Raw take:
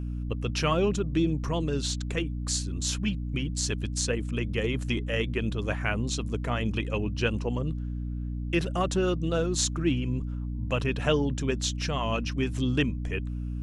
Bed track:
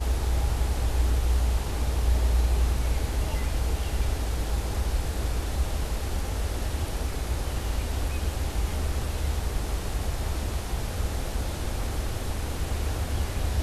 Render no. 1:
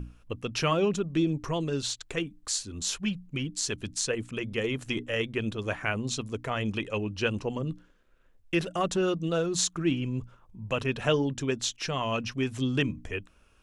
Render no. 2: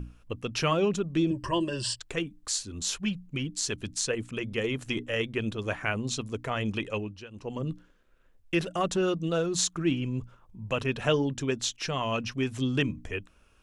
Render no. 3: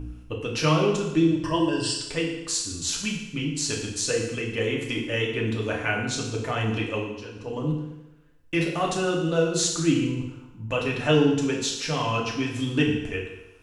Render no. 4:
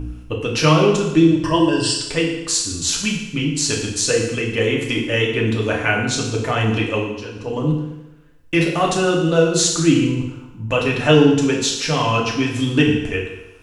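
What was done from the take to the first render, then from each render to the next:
notches 60/120/180/240/300 Hz
1.3–2 ripple EQ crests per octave 1.3, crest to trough 16 dB; 6.92–7.64 dip -20 dB, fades 0.34 s
FDN reverb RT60 0.98 s, low-frequency decay 0.9×, high-frequency decay 0.95×, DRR -2 dB
gain +7.5 dB; limiter -2 dBFS, peak gain reduction 1.5 dB

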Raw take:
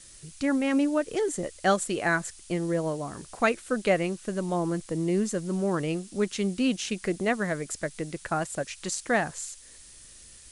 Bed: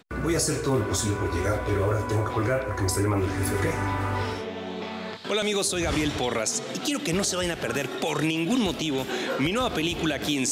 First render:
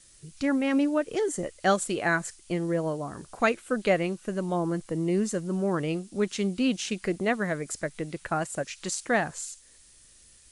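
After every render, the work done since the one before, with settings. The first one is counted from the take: noise print and reduce 6 dB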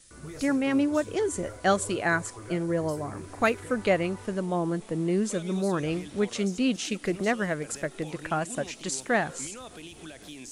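add bed -18 dB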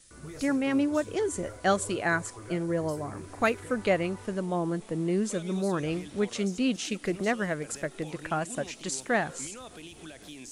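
gain -1.5 dB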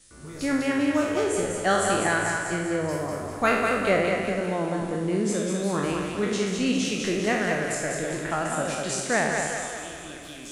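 spectral trails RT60 0.89 s; split-band echo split 440 Hz, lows 0.103 s, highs 0.199 s, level -4 dB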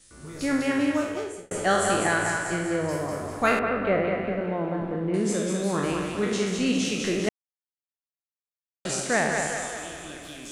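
0.84–1.51 fade out; 3.59–5.14 air absorption 460 m; 7.29–8.85 mute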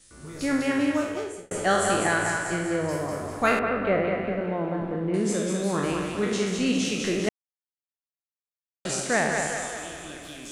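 nothing audible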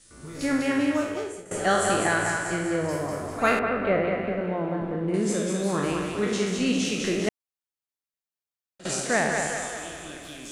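pre-echo 56 ms -16.5 dB

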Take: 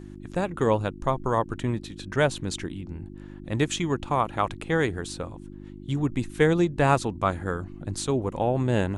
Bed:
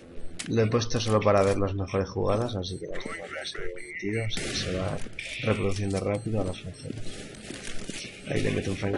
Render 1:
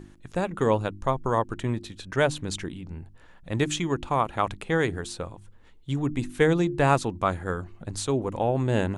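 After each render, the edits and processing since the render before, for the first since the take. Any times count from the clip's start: de-hum 50 Hz, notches 7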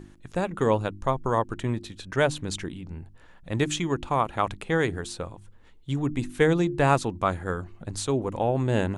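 nothing audible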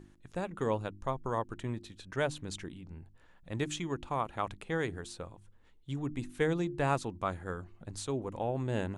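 gain -9 dB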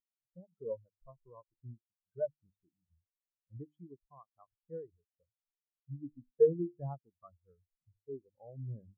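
in parallel at +2 dB: compressor, threshold -40 dBFS, peak gain reduction 15 dB; on the sum: spectral expander 4:1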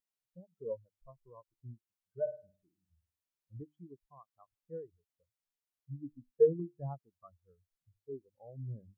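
2.2–3.62 flutter echo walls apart 9 m, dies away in 0.37 s; 6.59–8.12 dynamic EQ 350 Hz, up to -7 dB, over -49 dBFS, Q 5.8

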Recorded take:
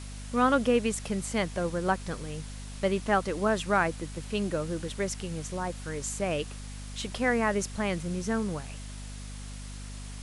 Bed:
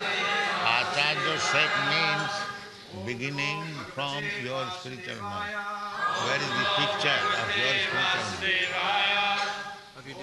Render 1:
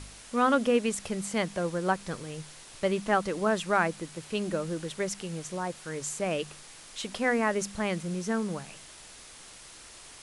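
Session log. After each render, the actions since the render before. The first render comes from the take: de-hum 50 Hz, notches 5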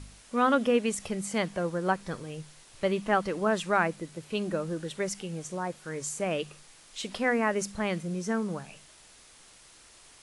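noise print and reduce 6 dB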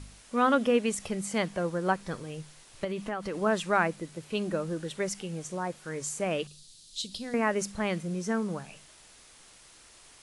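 2.84–3.36 compressor, threshold -29 dBFS; 6.47–7.34 EQ curve 140 Hz 0 dB, 940 Hz -21 dB, 2200 Hz -18 dB, 4000 Hz +7 dB, 5800 Hz +1 dB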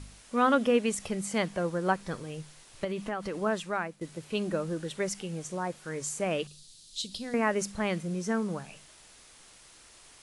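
3.24–4.01 fade out, to -13.5 dB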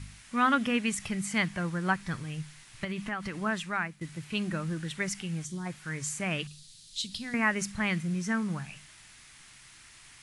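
5.45–5.66 spectral gain 390–3000 Hz -12 dB; graphic EQ 125/500/2000 Hz +8/-12/+7 dB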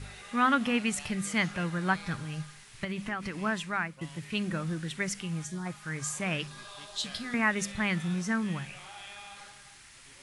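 add bed -21.5 dB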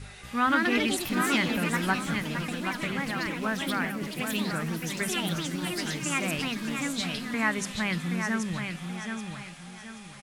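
on a send: feedback echo 0.778 s, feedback 35%, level -6 dB; on the sum: echoes that change speed 0.235 s, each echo +4 st, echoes 2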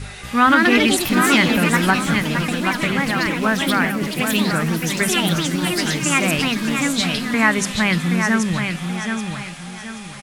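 gain +11 dB; limiter -3 dBFS, peak gain reduction 2.5 dB

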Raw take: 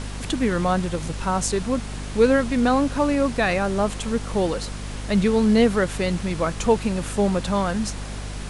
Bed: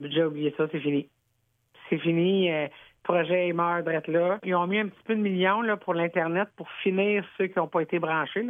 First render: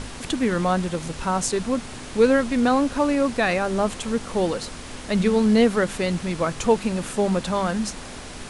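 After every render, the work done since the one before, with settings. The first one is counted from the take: de-hum 50 Hz, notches 4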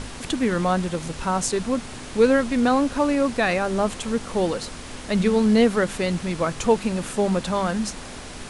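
nothing audible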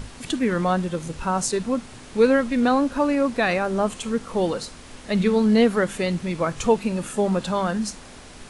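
noise print and reduce 6 dB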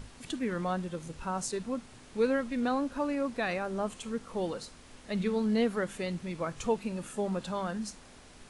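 gain -10.5 dB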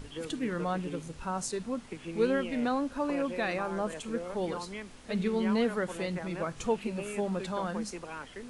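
add bed -15.5 dB

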